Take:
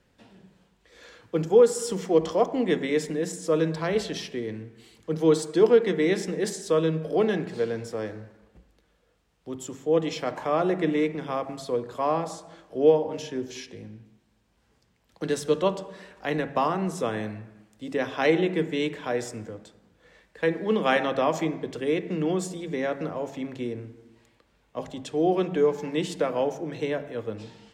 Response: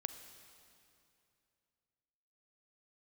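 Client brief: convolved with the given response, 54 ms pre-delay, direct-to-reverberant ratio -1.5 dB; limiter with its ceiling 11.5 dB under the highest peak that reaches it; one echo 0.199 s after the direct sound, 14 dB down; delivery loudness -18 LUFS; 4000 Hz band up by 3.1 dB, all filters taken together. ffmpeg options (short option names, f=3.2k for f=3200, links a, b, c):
-filter_complex "[0:a]equalizer=f=4k:t=o:g=4,alimiter=limit=-19dB:level=0:latency=1,aecho=1:1:199:0.2,asplit=2[a][b];[1:a]atrim=start_sample=2205,adelay=54[c];[b][c]afir=irnorm=-1:irlink=0,volume=3dB[d];[a][d]amix=inputs=2:normalize=0,volume=8.5dB"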